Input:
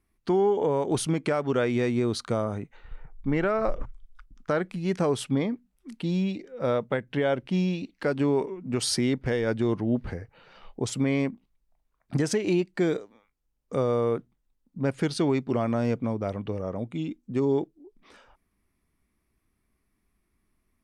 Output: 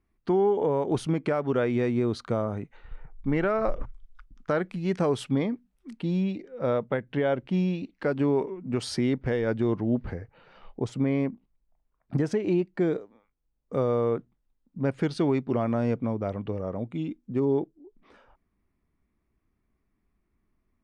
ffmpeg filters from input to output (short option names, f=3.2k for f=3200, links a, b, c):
-af "asetnsamples=n=441:p=0,asendcmd='2.57 lowpass f 4200;5.93 lowpass f 2200;10.84 lowpass f 1200;13.75 lowpass f 2400;17.32 lowpass f 1400',lowpass=f=2k:p=1"